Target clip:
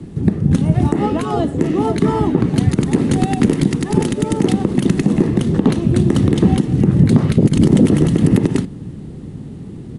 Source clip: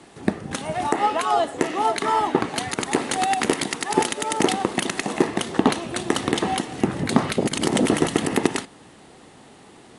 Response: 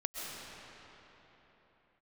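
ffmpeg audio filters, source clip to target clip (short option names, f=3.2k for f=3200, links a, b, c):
-filter_complex "[0:a]firequalizer=gain_entry='entry(160,0);entry(240,-8);entry(710,-29)':delay=0.05:min_phase=1,acrossover=split=420[a][b];[a]acompressor=threshold=-32dB:ratio=6[c];[c][b]amix=inputs=2:normalize=0,alimiter=level_in=26.5dB:limit=-1dB:release=50:level=0:latency=1,volume=-1dB"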